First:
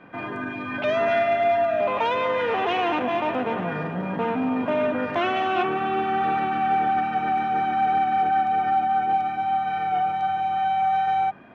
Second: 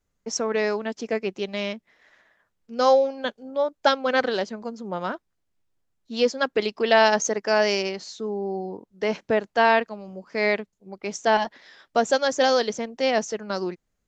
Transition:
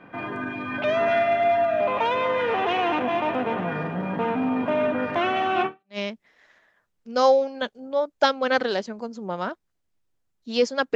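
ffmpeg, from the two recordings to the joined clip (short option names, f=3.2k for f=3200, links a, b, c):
-filter_complex "[0:a]apad=whole_dur=10.95,atrim=end=10.95,atrim=end=5.98,asetpts=PTS-STARTPTS[a];[1:a]atrim=start=1.29:end=6.58,asetpts=PTS-STARTPTS[b];[a][b]acrossfade=d=0.32:c1=exp:c2=exp"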